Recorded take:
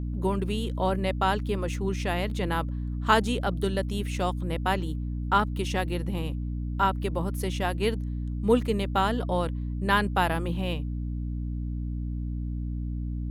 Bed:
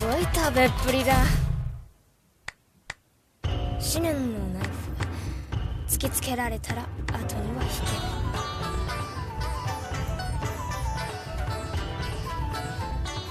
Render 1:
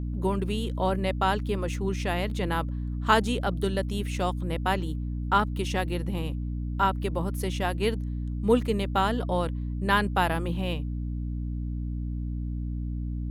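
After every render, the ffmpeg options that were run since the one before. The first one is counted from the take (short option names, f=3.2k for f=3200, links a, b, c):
-af anull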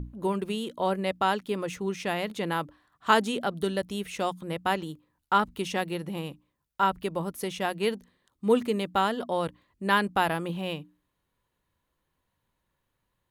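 -af "bandreject=f=60:t=h:w=6,bandreject=f=120:t=h:w=6,bandreject=f=180:t=h:w=6,bandreject=f=240:t=h:w=6,bandreject=f=300:t=h:w=6"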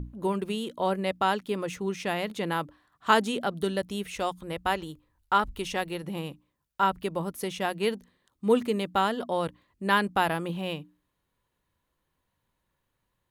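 -filter_complex "[0:a]asplit=3[a][b][c];[a]afade=t=out:st=4.14:d=0.02[d];[b]asubboost=boost=8.5:cutoff=63,afade=t=in:st=4.14:d=0.02,afade=t=out:st=6.02:d=0.02[e];[c]afade=t=in:st=6.02:d=0.02[f];[d][e][f]amix=inputs=3:normalize=0"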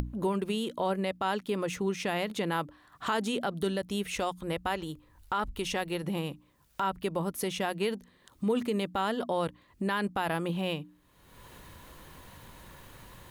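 -af "acompressor=mode=upward:threshold=-27dB:ratio=2.5,alimiter=limit=-20dB:level=0:latency=1:release=52"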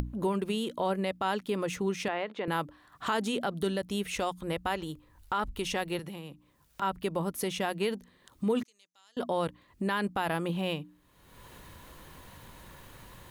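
-filter_complex "[0:a]asettb=1/sr,asplit=3[a][b][c];[a]atrim=end=2.084[d];[b]atrim=start=2.08:end=2.48,asetpts=PTS-STARTPTS,afade=t=in:d=0.004:c=qsin,afade=t=out:st=0.396:d=0.004:c=qsin,highpass=350,lowpass=2.3k[e];[c]atrim=start=2.476[f];[d][e]acrossfade=d=0.004:c1=hsin:c2=qsin[g];[g][f]acrossfade=d=0.004:c1=qsin:c2=hsin,asettb=1/sr,asplit=3[h][i][j];[h]atrim=end=5.994[k];[i]atrim=start=5.99:end=6.82,asetpts=PTS-STARTPTS,afade=t=in:d=0.004:c=qsin,afade=t=out:st=0.826:d=0.004:c=qsin,acrossover=split=320|1500[l][m][n];[l]acompressor=threshold=-44dB:ratio=4[o];[m]acompressor=threshold=-48dB:ratio=4[p];[n]acompressor=threshold=-50dB:ratio=4[q];[o][p][q]amix=inputs=3:normalize=0[r];[j]atrim=start=6.816[s];[k][r]acrossfade=d=0.004:c1=hsin:c2=qsin[t];[t][s]acrossfade=d=0.004:c1=qsin:c2=hsin,asettb=1/sr,asplit=3[u][v][w];[u]atrim=end=8.634[x];[v]atrim=start=8.63:end=9.17,asetpts=PTS-STARTPTS,afade=t=in:d=0.004:c=qsin,afade=t=out:st=0.536:d=0.004:c=qsin,bandpass=f=6.1k:t=q:w=8.9[y];[w]atrim=start=9.166[z];[x][y]acrossfade=d=0.004:c1=hsin:c2=qsin[aa];[aa][z]acrossfade=d=0.004:c1=qsin:c2=hsin"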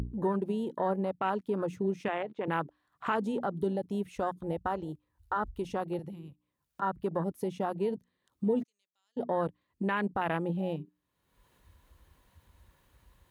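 -af "afwtdn=0.02,highpass=50"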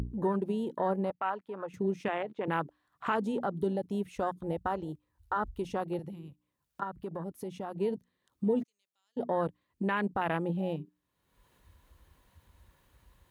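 -filter_complex "[0:a]asettb=1/sr,asplit=3[a][b][c];[a]atrim=end=1.104[d];[b]atrim=start=1.1:end=1.74,asetpts=PTS-STARTPTS,afade=t=in:d=0.004:c=qsin,afade=t=out:st=0.636:d=0.004:c=qsin,acrossover=split=570 2700:gain=0.2 1 0.2[e][f][g];[e][f][g]amix=inputs=3:normalize=0[h];[c]atrim=start=1.736[i];[d][h]acrossfade=d=0.004:c1=hsin:c2=qsin[j];[j][i]acrossfade=d=0.004:c1=qsin:c2=hsin,asettb=1/sr,asplit=3[k][l][m];[k]atrim=end=6.834[n];[l]atrim=start=6.83:end=7.77,asetpts=PTS-STARTPTS,afade=t=in:d=0.004:c=qsin,afade=t=out:st=0.936:d=0.004:c=qsin,acompressor=threshold=-39dB:ratio=2:attack=3.2:release=140:knee=1:detection=peak[o];[m]atrim=start=7.766[p];[n][o]acrossfade=d=0.004:c1=hsin:c2=qsin[q];[q][p]acrossfade=d=0.004:c1=qsin:c2=hsin"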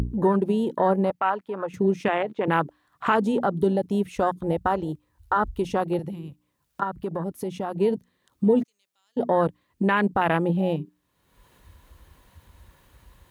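-af "volume=9dB"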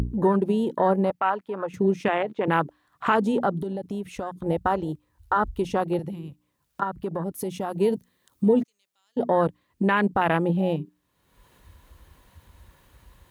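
-filter_complex "[0:a]asettb=1/sr,asplit=3[a][b][c];[a]atrim=end=3.604[d];[b]atrim=start=3.6:end=4.46,asetpts=PTS-STARTPTS,afade=t=in:d=0.004:c=qsin,afade=t=out:st=0.856:d=0.004:c=qsin,acompressor=threshold=-27dB:ratio=6:attack=3.2:release=140:knee=1:detection=peak[e];[c]atrim=start=4.456[f];[d][e]acrossfade=d=0.004:c1=hsin:c2=qsin[g];[g][f]acrossfade=d=0.004:c1=qsin:c2=hsin,asettb=1/sr,asplit=3[h][i][j];[h]atrim=end=7.344[k];[i]atrim=start=7.34:end=8.49,asetpts=PTS-STARTPTS,afade=t=in:d=0.004:c=qsin,afade=t=out:st=1.146:d=0.004:c=qsin,highshelf=f=6.5k:g=9.5[l];[j]atrim=start=8.486[m];[k][l]acrossfade=d=0.004:c1=hsin:c2=qsin[n];[n][m]acrossfade=d=0.004:c1=qsin:c2=hsin"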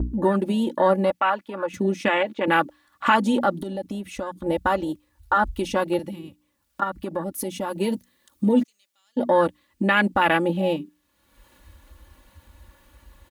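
-af "aecho=1:1:3.5:0.69,adynamicequalizer=threshold=0.0178:dfrequency=1500:dqfactor=0.7:tfrequency=1500:tqfactor=0.7:attack=5:release=100:ratio=0.375:range=3.5:mode=boostabove:tftype=highshelf"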